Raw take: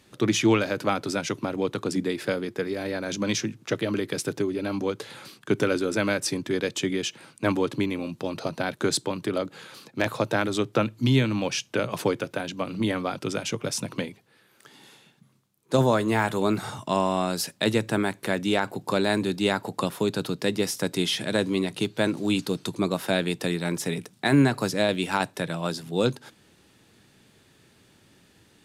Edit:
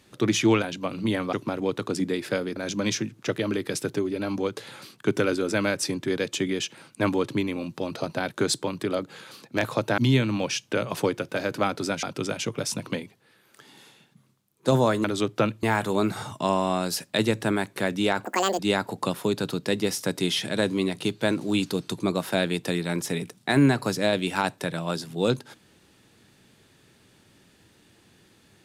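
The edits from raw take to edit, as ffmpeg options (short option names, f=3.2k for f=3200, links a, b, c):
-filter_complex "[0:a]asplit=11[a][b][c][d][e][f][g][h][i][j][k];[a]atrim=end=0.622[l];[b]atrim=start=12.378:end=13.092[m];[c]atrim=start=1.288:end=2.522[n];[d]atrim=start=2.988:end=10.412[o];[e]atrim=start=10.998:end=12.382[p];[f]atrim=start=0.618:end=1.292[q];[g]atrim=start=13.088:end=16.102[r];[h]atrim=start=10.408:end=11.002[s];[i]atrim=start=16.098:end=18.724[t];[j]atrim=start=18.72:end=19.35,asetpts=PTS-STARTPTS,asetrate=81585,aresample=44100[u];[k]atrim=start=19.346[v];[l][m]acrossfade=d=0.004:c1=hsin:c2=hsin[w];[w][n]acrossfade=d=0.004:c1=hsin:c2=hsin[x];[x][o]acrossfade=d=0.004:c1=hsin:c2=hsin[y];[y][p]acrossfade=d=0.004:c1=hsin:c2=hsin[z];[z][q]acrossfade=d=0.004:c1=hsin:c2=hsin[aa];[aa][r]acrossfade=d=0.004:c1=hsin:c2=hsin[ab];[ab][s]acrossfade=d=0.004:c1=hsin:c2=hsin[ac];[ac][t]acrossfade=d=0.004:c1=hsin:c2=hsin[ad];[ad][u]acrossfade=d=0.004:c1=hsin:c2=hsin[ae];[ae][v]acrossfade=d=0.004:c1=hsin:c2=hsin"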